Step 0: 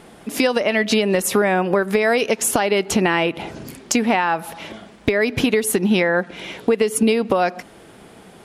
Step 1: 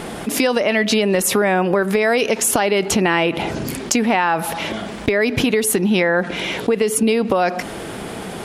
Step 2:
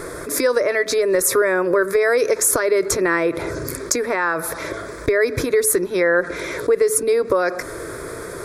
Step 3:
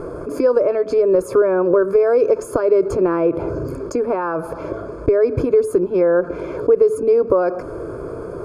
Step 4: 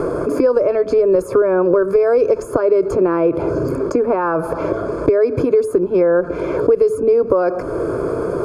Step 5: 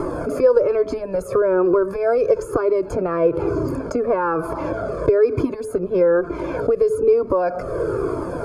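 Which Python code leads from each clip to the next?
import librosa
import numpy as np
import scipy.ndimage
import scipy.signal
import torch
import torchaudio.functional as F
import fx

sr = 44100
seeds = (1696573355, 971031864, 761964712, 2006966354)

y1 = fx.env_flatten(x, sr, amount_pct=50)
y1 = y1 * librosa.db_to_amplitude(-1.0)
y2 = fx.fixed_phaser(y1, sr, hz=790.0, stages=6)
y2 = y2 * librosa.db_to_amplitude(2.0)
y3 = np.convolve(y2, np.full(23, 1.0 / 23))[:len(y2)]
y3 = y3 * librosa.db_to_amplitude(4.0)
y4 = fx.band_squash(y3, sr, depth_pct=70)
y4 = y4 * librosa.db_to_amplitude(1.0)
y5 = fx.comb_cascade(y4, sr, direction='falling', hz=1.1)
y5 = y5 * librosa.db_to_amplitude(2.0)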